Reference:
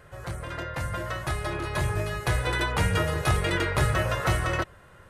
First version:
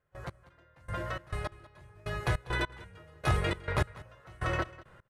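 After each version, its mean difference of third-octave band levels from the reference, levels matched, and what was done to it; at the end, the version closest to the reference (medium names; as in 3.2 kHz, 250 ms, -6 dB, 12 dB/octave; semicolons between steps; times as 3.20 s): 10.5 dB: trance gate ".x....xx" 102 bpm -24 dB; treble shelf 6.1 kHz -10 dB; delay 194 ms -19.5 dB; trim -3.5 dB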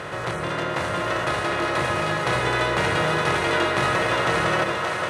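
6.5 dB: spectral levelling over time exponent 0.4; high-pass 190 Hz 12 dB/octave; distance through air 61 m; two-band feedback delay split 410 Hz, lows 82 ms, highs 575 ms, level -3.5 dB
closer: second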